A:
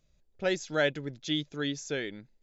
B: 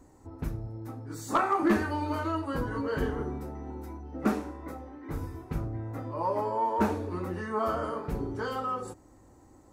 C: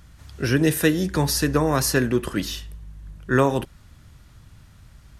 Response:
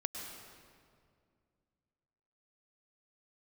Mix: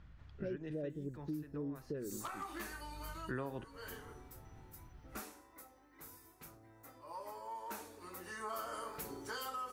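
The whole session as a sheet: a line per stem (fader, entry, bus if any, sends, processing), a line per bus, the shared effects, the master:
+1.5 dB, 0.00 s, no send, inverse Chebyshev low-pass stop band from 1 kHz, stop band 40 dB
7.84 s -15.5 dB -> 8.61 s -5.5 dB, 0.90 s, no send, tilt EQ +4.5 dB/octave; hum 50 Hz, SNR 27 dB; treble shelf 10 kHz +6.5 dB
-9.0 dB, 0.00 s, no send, low-pass 2.7 kHz 12 dB/octave; auto duck -17 dB, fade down 1.10 s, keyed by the first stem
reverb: none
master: compression 4:1, threshold -40 dBFS, peak gain reduction 15 dB

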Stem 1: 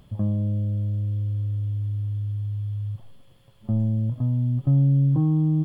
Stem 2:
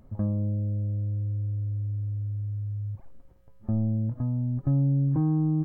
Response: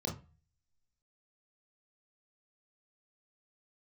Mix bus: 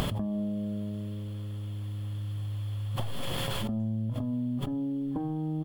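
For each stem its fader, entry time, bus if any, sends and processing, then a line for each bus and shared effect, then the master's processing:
-1.0 dB, 0.00 s, send -22 dB, tone controls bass -8 dB, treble 0 dB; level flattener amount 100%
-1.5 dB, 6.3 ms, polarity flipped, no send, none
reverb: on, RT60 0.35 s, pre-delay 23 ms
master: compression, threshold -28 dBFS, peak gain reduction 8.5 dB

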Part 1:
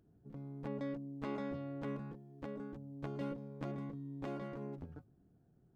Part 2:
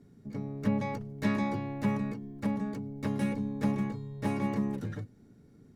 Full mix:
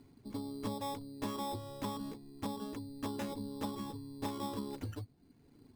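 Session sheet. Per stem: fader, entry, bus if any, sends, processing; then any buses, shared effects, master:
-1.0 dB, 0.00 s, no send, low-pass 2.4 kHz
-1.5 dB, 0.00 s, polarity flipped, no send, reverb removal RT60 0.96 s; FFT filter 110 Hz 0 dB, 180 Hz -12 dB, 260 Hz +4 dB, 430 Hz -1 dB, 610 Hz -1 dB, 1 kHz +9 dB, 1.5 kHz -5 dB, 5.2 kHz -19 dB, 8.5 kHz +12 dB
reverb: none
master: sample-and-hold 10×; compression 6:1, threshold -35 dBFS, peak gain reduction 8.5 dB

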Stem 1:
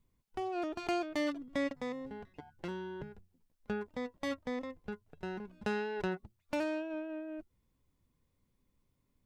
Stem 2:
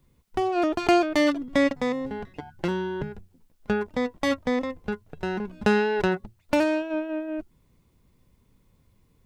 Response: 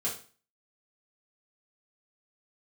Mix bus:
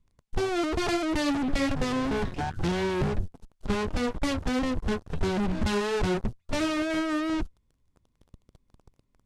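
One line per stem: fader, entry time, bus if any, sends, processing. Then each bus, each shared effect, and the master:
-0.5 dB, 0.00 s, no send, none
-14.0 dB, 0.00 s, no send, peaking EQ 2.2 kHz -12.5 dB 0.39 oct; vibrato 2.9 Hz 40 cents; fuzz box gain 46 dB, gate -54 dBFS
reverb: none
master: Bessel low-pass 8.6 kHz, order 8; bass shelf 100 Hz +9 dB; loudspeaker Doppler distortion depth 0.15 ms

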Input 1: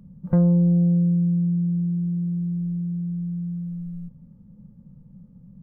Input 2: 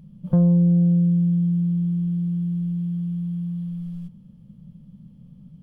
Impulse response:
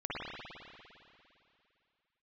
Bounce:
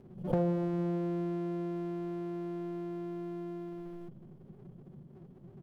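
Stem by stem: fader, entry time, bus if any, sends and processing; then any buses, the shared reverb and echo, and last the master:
-3.5 dB, 0.00 s, no send, comb filter that takes the minimum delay 7.7 ms; high-pass 99 Hz 12 dB/octave; compression 2:1, threshold -27 dBFS, peak gain reduction 6 dB
-12.0 dB, 0.9 ms, polarity flipped, send -15.5 dB, high-order bell 530 Hz +11.5 dB; swell ahead of each attack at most 140 dB/s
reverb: on, RT60 2.7 s, pre-delay 50 ms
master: endings held to a fixed fall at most 230 dB/s

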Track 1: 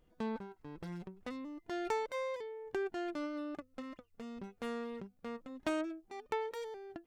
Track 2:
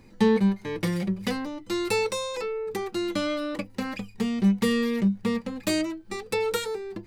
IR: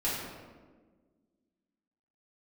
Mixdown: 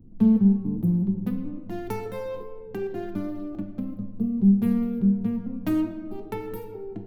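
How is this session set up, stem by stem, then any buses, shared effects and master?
-2.0 dB, 0.00 s, send -8 dB, local Wiener filter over 25 samples
-0.5 dB, 0.00 s, send -16 dB, local Wiener filter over 15 samples; inverse Chebyshev band-stop 780–6400 Hz, stop band 50 dB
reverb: on, RT60 1.5 s, pre-delay 3 ms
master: bass shelf 210 Hz +5 dB

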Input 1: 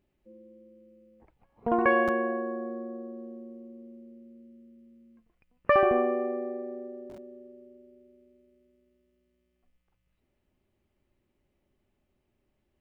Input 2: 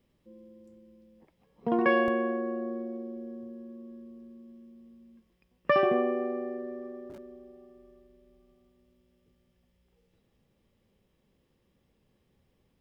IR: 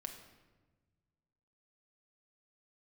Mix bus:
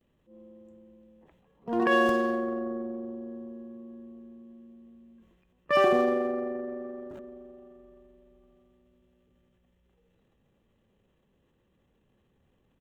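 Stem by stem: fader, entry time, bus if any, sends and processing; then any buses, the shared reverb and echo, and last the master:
-18.5 dB, 0.00 s, no send, none
+1.0 dB, 11 ms, no send, local Wiener filter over 9 samples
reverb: none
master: treble shelf 2.4 kHz +8.5 dB; band-stop 2.2 kHz, Q 8.6; transient shaper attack -8 dB, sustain +7 dB

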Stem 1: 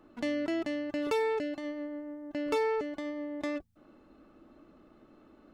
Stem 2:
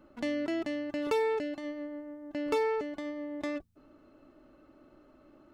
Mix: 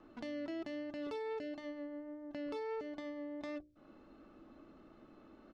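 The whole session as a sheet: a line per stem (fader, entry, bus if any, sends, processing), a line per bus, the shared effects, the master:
-0.5 dB, 0.00 s, no send, peak limiter -27.5 dBFS, peak gain reduction 9 dB; low-pass 6.8 kHz 24 dB/octave
-19.0 dB, 0.3 ms, no send, none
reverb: none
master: hum notches 60/120/180/240/300/360/420/480/540/600 Hz; vibrato 1.5 Hz 16 cents; compression 1.5:1, threshold -52 dBFS, peak gain reduction 7.5 dB

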